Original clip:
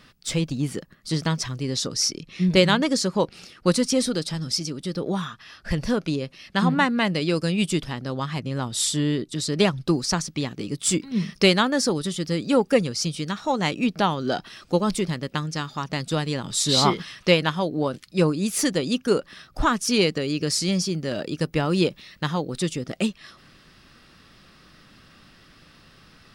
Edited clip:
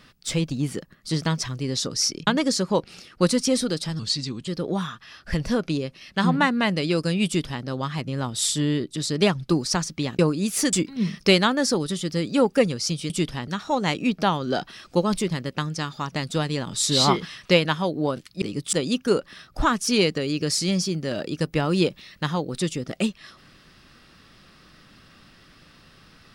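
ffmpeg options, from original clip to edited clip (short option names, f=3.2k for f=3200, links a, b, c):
-filter_complex "[0:a]asplit=10[a][b][c][d][e][f][g][h][i][j];[a]atrim=end=2.272[k];[b]atrim=start=2.718:end=4.444[l];[c]atrim=start=4.44:end=4.86,asetpts=PTS-STARTPTS,asetrate=37926,aresample=44100,atrim=end_sample=21537,asetpts=PTS-STARTPTS[m];[d]atrim=start=4.856:end=10.572[n];[e]atrim=start=18.188:end=18.732[o];[f]atrim=start=10.878:end=13.252[p];[g]atrim=start=7.638:end=8.022[q];[h]atrim=start=13.248:end=18.192[r];[i]atrim=start=10.568:end=10.882[s];[j]atrim=start=18.728[t];[k][l]acrossfade=d=0.004:c1=hsin:c2=hsin[u];[u][m]acrossfade=d=0.004:c1=hsin:c2=hsin[v];[v][n]acrossfade=d=0.004:c1=hsin:c2=hsin[w];[w][o]acrossfade=d=0.004:c1=hsin:c2=hsin[x];[x][p]acrossfade=d=0.004:c1=hsin:c2=hsin[y];[y][q]acrossfade=d=0.004:c1=hsin:c2=hsin[z];[z][r]acrossfade=d=0.004:c1=hsin:c2=hsin[aa];[aa][s]acrossfade=d=0.004:c1=hsin:c2=hsin[ab];[ab][t]acrossfade=d=0.004:c1=hsin:c2=hsin"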